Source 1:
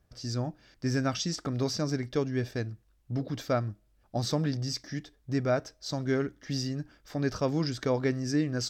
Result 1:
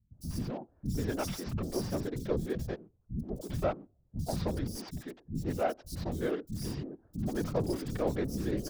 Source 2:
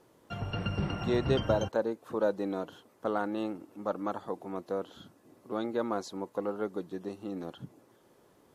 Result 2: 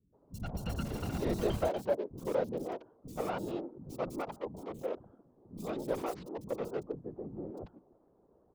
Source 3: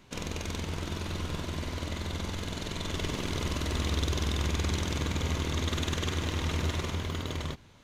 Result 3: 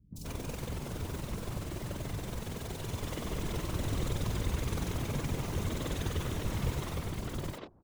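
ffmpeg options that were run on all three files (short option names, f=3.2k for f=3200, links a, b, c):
-filter_complex "[0:a]acrossover=split=970[a][b];[b]acrusher=bits=4:dc=4:mix=0:aa=0.000001[c];[a][c]amix=inputs=2:normalize=0,afftfilt=real='hypot(re,im)*cos(2*PI*random(0))':imag='hypot(re,im)*sin(2*PI*random(1))':win_size=512:overlap=0.75,acrossover=split=240|4400[d][e][f];[f]adelay=40[g];[e]adelay=130[h];[d][h][g]amix=inputs=3:normalize=0,volume=4dB"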